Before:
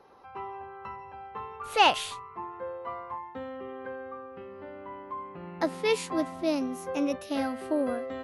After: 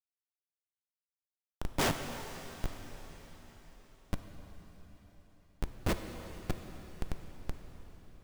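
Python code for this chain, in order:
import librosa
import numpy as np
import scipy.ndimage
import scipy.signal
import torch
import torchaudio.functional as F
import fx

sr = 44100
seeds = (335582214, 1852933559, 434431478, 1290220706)

p1 = fx.highpass(x, sr, hz=1400.0, slope=6)
p2 = fx.over_compress(p1, sr, threshold_db=-43.0, ratio=-1.0)
p3 = p1 + (p2 * librosa.db_to_amplitude(-2.0))
p4 = fx.rotary_switch(p3, sr, hz=1.1, then_hz=6.3, switch_at_s=3.22)
p5 = fx.noise_vocoder(p4, sr, seeds[0], bands=2)
p6 = fx.schmitt(p5, sr, flips_db=-25.5)
p7 = fx.rev_plate(p6, sr, seeds[1], rt60_s=4.8, hf_ratio=1.0, predelay_ms=0, drr_db=6.0)
y = p7 * librosa.db_to_amplitude(11.0)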